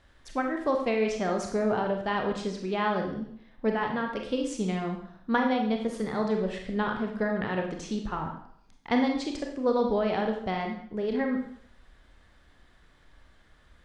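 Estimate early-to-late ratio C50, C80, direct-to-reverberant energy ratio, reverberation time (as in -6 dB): 5.5 dB, 9.0 dB, 2.0 dB, 0.65 s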